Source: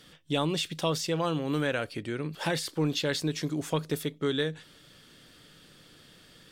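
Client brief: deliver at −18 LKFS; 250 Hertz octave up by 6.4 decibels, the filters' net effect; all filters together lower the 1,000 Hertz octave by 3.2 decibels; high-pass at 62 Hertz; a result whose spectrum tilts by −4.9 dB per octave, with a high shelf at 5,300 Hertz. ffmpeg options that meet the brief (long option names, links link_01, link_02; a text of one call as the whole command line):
ffmpeg -i in.wav -af "highpass=62,equalizer=frequency=250:width_type=o:gain=9,equalizer=frequency=1000:width_type=o:gain=-5,highshelf=frequency=5300:gain=7.5,volume=9dB" out.wav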